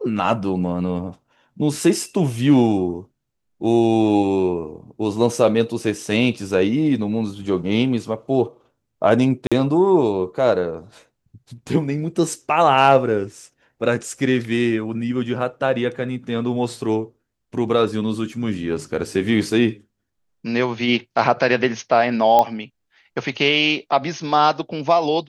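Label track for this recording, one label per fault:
9.470000	9.520000	drop-out 46 ms
22.390000	22.390000	click −5 dBFS

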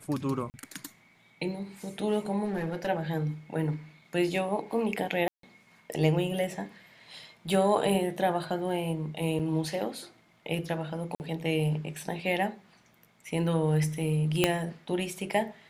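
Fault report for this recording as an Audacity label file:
0.500000	0.540000	drop-out 39 ms
2.440000	2.890000	clipping −26.5 dBFS
5.280000	5.430000	drop-out 153 ms
9.390000	9.400000	drop-out 5.9 ms
11.150000	11.200000	drop-out 49 ms
14.440000	14.440000	click −7 dBFS

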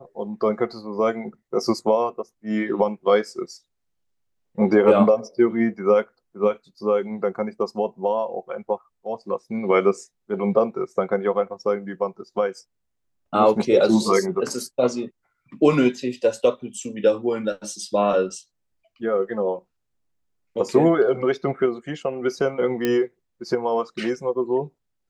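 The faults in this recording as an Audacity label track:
22.850000	22.850000	click −9 dBFS

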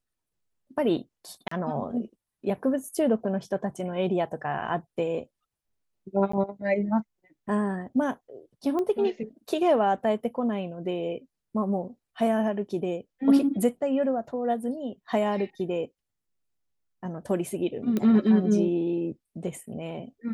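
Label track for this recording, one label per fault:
1.480000	1.510000	drop-out 34 ms
6.320000	6.330000	drop-out 14 ms
8.790000	8.790000	click −19 dBFS
17.970000	17.970000	click −15 dBFS

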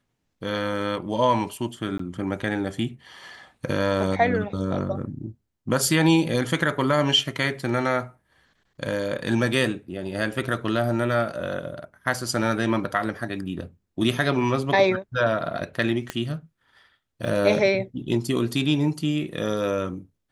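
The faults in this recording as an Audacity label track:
1.980000	1.990000	drop-out 14 ms
16.100000	16.100000	click −13 dBFS
17.250000	17.250000	drop-out 3.8 ms

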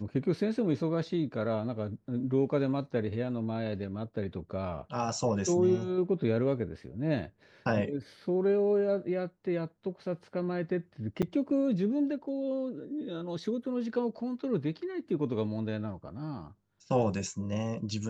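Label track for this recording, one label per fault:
11.220000	11.230000	drop-out 6.7 ms

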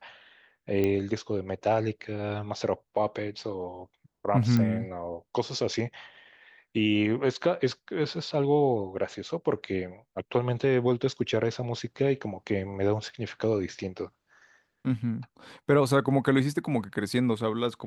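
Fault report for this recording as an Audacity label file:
0.840000	0.840000	click −15 dBFS
4.570000	4.570000	click −15 dBFS
13.090000	13.090000	drop-out 3.6 ms

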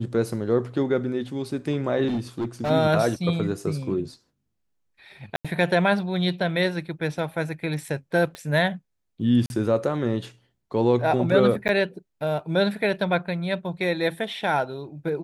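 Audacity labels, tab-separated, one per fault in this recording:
2.070000	2.710000	clipping −22.5 dBFS
5.360000	5.450000	drop-out 86 ms
8.350000	8.350000	click −21 dBFS
9.460000	9.500000	drop-out 41 ms
11.680000	11.690000	drop-out 9.7 ms

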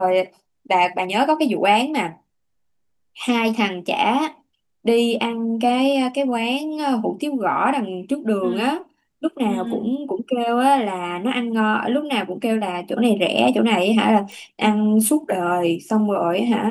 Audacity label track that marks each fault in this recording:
14.320000	14.320000	click

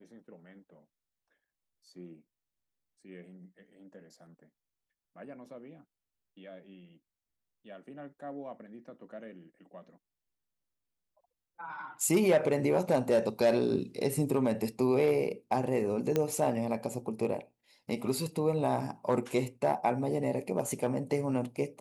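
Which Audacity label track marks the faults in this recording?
16.160000	16.160000	click −15 dBFS

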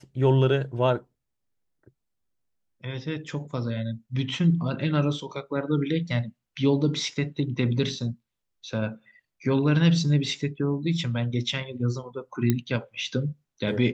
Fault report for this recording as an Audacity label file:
12.500000	12.500000	click −9 dBFS

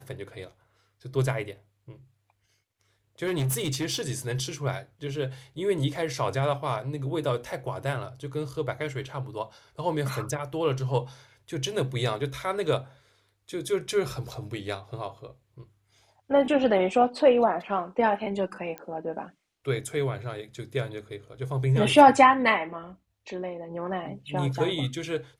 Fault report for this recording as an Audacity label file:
3.260000	4.060000	clipping −23.5 dBFS
18.780000	18.780000	click −21 dBFS

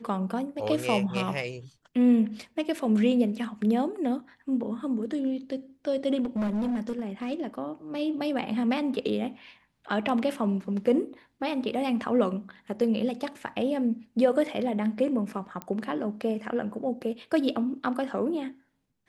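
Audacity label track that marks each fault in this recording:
6.230000	7.330000	clipping −25 dBFS
15.620000	15.620000	click −19 dBFS

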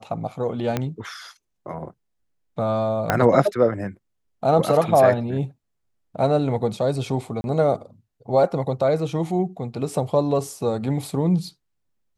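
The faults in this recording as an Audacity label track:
0.770000	0.770000	click −9 dBFS
3.100000	3.100000	click −5 dBFS
7.410000	7.440000	drop-out 31 ms

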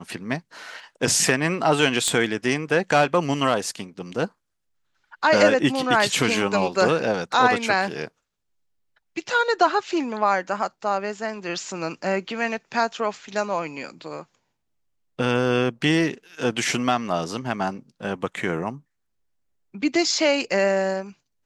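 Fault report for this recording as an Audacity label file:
2.080000	2.080000	click −9 dBFS

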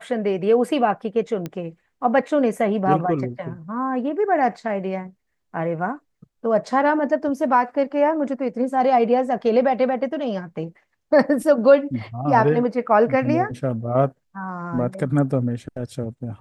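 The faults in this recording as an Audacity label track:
1.460000	1.460000	click −16 dBFS

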